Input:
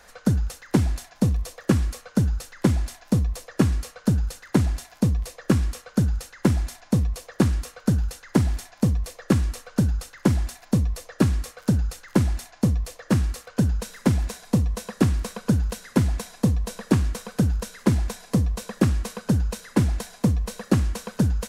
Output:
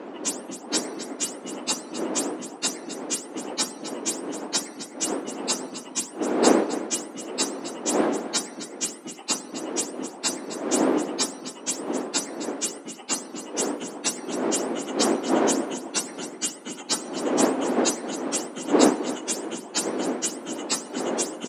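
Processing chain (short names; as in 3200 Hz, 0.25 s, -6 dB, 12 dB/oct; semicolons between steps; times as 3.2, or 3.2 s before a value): spectrum mirrored in octaves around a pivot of 1200 Hz; wind noise 370 Hz -27 dBFS; elliptic band-pass 270–9000 Hz, stop band 40 dB; on a send: feedback echo 0.262 s, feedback 30%, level -13 dB; on the sum: gain +2 dB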